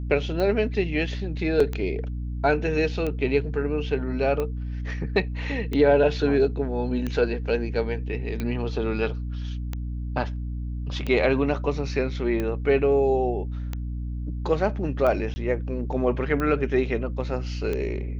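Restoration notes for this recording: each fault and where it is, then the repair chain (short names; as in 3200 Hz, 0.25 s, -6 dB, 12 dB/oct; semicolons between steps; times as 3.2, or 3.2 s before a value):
hum 60 Hz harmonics 5 -30 dBFS
tick 45 rpm -16 dBFS
1.6 gap 3.9 ms
15.34–15.36 gap 20 ms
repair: de-click; de-hum 60 Hz, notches 5; interpolate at 1.6, 3.9 ms; interpolate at 15.34, 20 ms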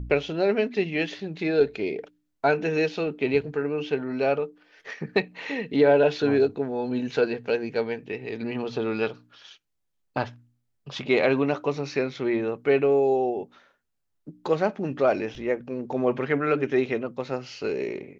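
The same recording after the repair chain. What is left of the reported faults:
none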